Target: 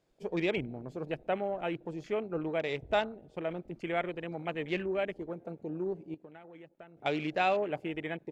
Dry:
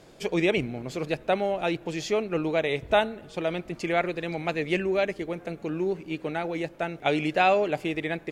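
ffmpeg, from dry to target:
-filter_complex "[0:a]afwtdn=0.0141,asettb=1/sr,asplit=3[a][b][c];[a]atrim=end=6.144[d];[b]atrim=start=6.14:end=6.97,asetpts=PTS-STARTPTS,afade=t=in:d=0.004:c=qsin,afade=t=out:st=0.826:d=0.004:c=qsin,acompressor=threshold=-41dB:ratio=12[e];[c]atrim=start=6.966[f];[d][e]acrossfade=d=0.004:c1=hsin:c2=qsin[g];[g][f]acrossfade=d=0.004:c1=qsin:c2=hsin,volume=-7dB"

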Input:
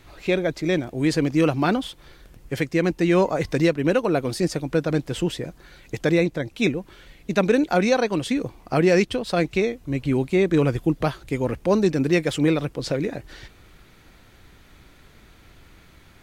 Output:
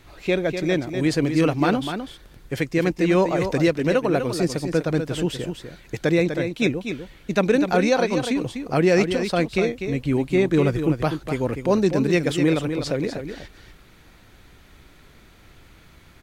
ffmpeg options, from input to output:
-af "aecho=1:1:248:0.398"

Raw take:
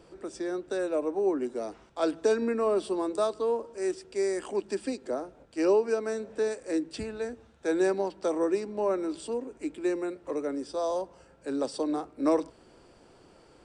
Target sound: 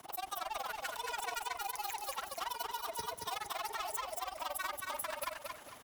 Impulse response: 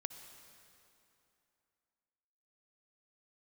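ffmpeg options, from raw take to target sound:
-filter_complex "[0:a]highpass=59,bandreject=f=95.75:t=h:w=4,bandreject=f=191.5:t=h:w=4,bandreject=f=287.25:t=h:w=4,bandreject=f=383:t=h:w=4,asetrate=103194,aresample=44100,equalizer=f=280:w=0.55:g=5.5,acrossover=split=180|1000[a][b][c];[b]acompressor=threshold=-41dB:ratio=8[d];[a][d][c]amix=inputs=3:normalize=0,alimiter=level_in=1.5dB:limit=-24dB:level=0:latency=1:release=75,volume=-1.5dB,asoftclip=type=tanh:threshold=-36dB,afreqshift=-56,tremolo=f=21:d=0.947,asetrate=42845,aresample=44100,atempo=1.0293,highshelf=f=3.8k:g=10.5,aecho=1:1:227|454|681|908:0.668|0.221|0.0728|0.024,volume=1dB"

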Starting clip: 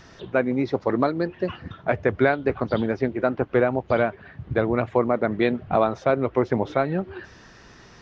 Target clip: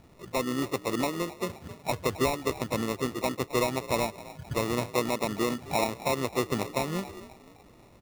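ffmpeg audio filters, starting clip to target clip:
-filter_complex "[0:a]equalizer=f=1.8k:t=o:w=1:g=-8.5,asplit=5[a][b][c][d][e];[b]adelay=264,afreqshift=49,volume=-17dB[f];[c]adelay=528,afreqshift=98,volume=-24.5dB[g];[d]adelay=792,afreqshift=147,volume=-32.1dB[h];[e]adelay=1056,afreqshift=196,volume=-39.6dB[i];[a][f][g][h][i]amix=inputs=5:normalize=0,asplit=2[j][k];[k]asetrate=55563,aresample=44100,atempo=0.793701,volume=-12dB[l];[j][l]amix=inputs=2:normalize=0,acrusher=samples=28:mix=1:aa=0.000001,volume=-6.5dB"

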